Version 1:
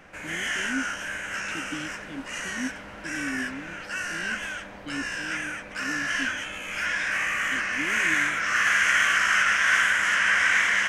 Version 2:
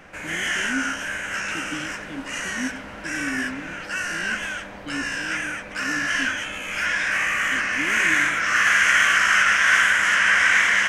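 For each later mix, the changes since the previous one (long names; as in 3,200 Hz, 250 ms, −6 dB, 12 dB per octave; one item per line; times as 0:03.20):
background +4.0 dB
reverb: on, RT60 0.95 s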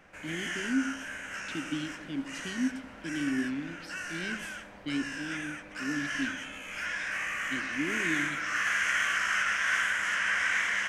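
background −11.0 dB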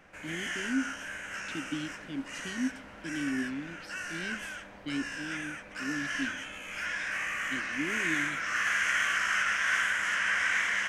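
speech: send −10.0 dB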